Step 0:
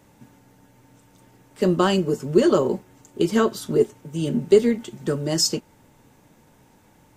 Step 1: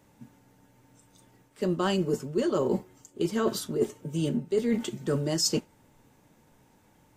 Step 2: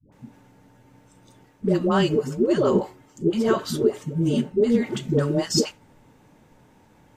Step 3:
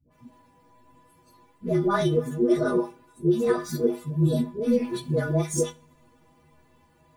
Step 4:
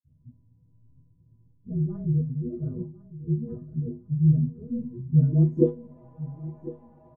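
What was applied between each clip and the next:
noise reduction from a noise print of the clip's start 9 dB; reversed playback; downward compressor 12 to 1, threshold −26 dBFS, peak gain reduction 17.5 dB; reversed playback; level +3 dB
high-shelf EQ 5,900 Hz −10 dB; all-pass dispersion highs, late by 123 ms, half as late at 480 Hz; level +6.5 dB
partials spread apart or drawn together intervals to 108%; stiff-string resonator 73 Hz, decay 0.36 s, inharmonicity 0.03; coupled-rooms reverb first 0.33 s, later 1.9 s, from −26 dB, DRR 16.5 dB; level +8 dB
all-pass dispersion lows, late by 46 ms, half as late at 400 Hz; low-pass filter sweep 120 Hz → 700 Hz, 0:05.07–0:06.01; repeating echo 1,054 ms, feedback 37%, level −16.5 dB; level +2.5 dB

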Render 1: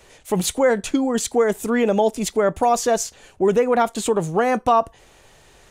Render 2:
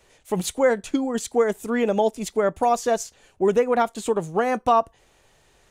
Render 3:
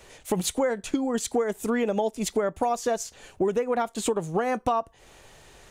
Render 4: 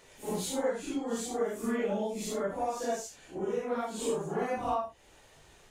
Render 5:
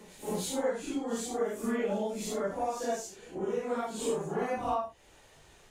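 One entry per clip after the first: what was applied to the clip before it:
expander for the loud parts 1.5 to 1, over −27 dBFS; level −1 dB
downward compressor 5 to 1, threshold −31 dBFS, peak gain reduction 15.5 dB; level +7.5 dB
random phases in long frames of 200 ms; level −6.5 dB
backwards echo 307 ms −21 dB

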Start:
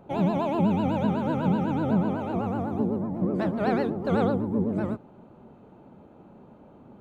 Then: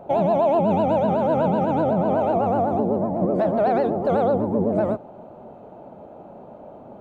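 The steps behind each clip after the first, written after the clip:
parametric band 650 Hz +14.5 dB 0.95 octaves
brickwall limiter −15 dBFS, peak gain reduction 8 dB
level +2.5 dB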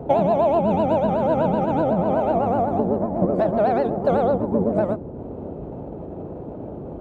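transient designer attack +5 dB, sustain −7 dB
noise in a band 43–490 Hz −34 dBFS

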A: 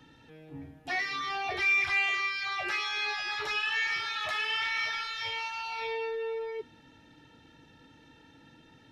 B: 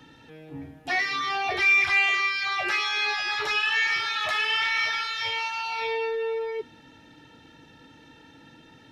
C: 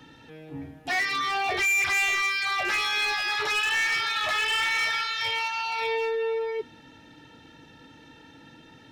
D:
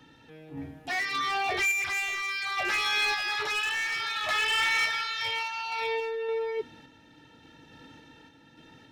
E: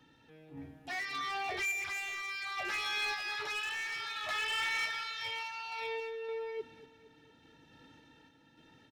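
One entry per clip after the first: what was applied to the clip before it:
low-shelf EQ 110 Hz −5 dB; level +6 dB
gain into a clipping stage and back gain 22.5 dB; level +1 dB
sample-and-hold tremolo 3.5 Hz
repeating echo 232 ms, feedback 57%, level −18 dB; level −8 dB

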